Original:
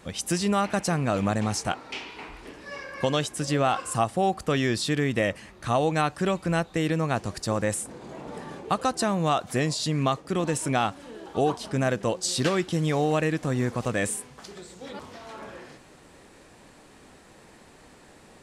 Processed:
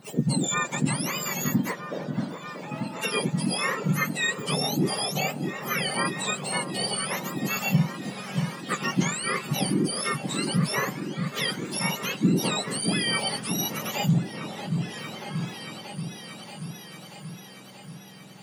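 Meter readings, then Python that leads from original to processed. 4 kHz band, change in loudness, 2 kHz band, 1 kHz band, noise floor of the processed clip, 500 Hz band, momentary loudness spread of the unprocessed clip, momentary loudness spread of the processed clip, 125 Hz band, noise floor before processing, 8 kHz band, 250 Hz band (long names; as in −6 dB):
+4.5 dB, −1.0 dB, +3.0 dB, −4.0 dB, −45 dBFS, −6.0 dB, 16 LU, 14 LU, +0.5 dB, −53 dBFS, +3.0 dB, +0.5 dB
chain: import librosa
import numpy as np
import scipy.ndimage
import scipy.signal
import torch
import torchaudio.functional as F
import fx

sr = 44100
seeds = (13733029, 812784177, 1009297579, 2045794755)

y = fx.octave_mirror(x, sr, pivot_hz=1200.0)
y = fx.echo_opening(y, sr, ms=632, hz=750, octaves=1, feedback_pct=70, wet_db=-6)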